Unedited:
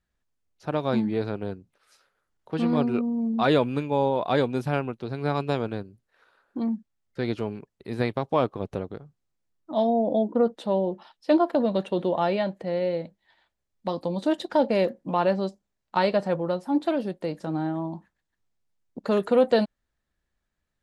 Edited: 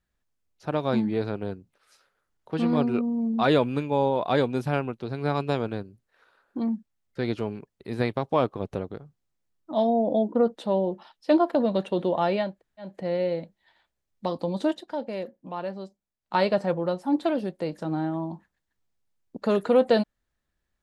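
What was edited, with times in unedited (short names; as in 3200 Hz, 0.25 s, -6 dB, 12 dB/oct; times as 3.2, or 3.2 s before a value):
12.51 insert room tone 0.38 s, crossfade 0.24 s
14.27–16 dip -10 dB, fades 0.17 s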